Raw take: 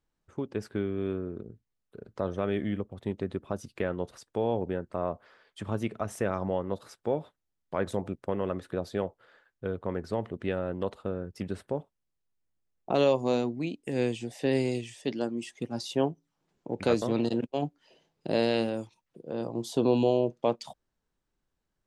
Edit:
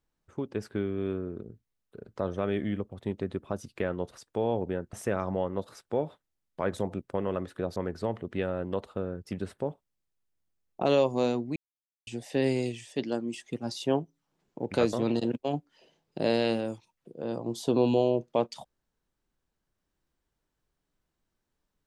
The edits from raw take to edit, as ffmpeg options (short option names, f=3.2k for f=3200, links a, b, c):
-filter_complex "[0:a]asplit=5[a][b][c][d][e];[a]atrim=end=4.932[f];[b]atrim=start=6.068:end=8.902[g];[c]atrim=start=9.848:end=13.65,asetpts=PTS-STARTPTS,afade=t=out:st=3.798:d=0.004:c=hsin[h];[d]atrim=start=13.65:end=14.16,asetpts=PTS-STARTPTS,volume=0[i];[e]atrim=start=14.16,asetpts=PTS-STARTPTS,afade=t=in:d=0.004:c=hsin[j];[f][g]acrossfade=d=0.004:c1=hsin:c2=hsin[k];[h][i][j]concat=n=3:v=0:a=1[l];[k][l]acrossfade=d=0.004:c1=hsin:c2=hsin"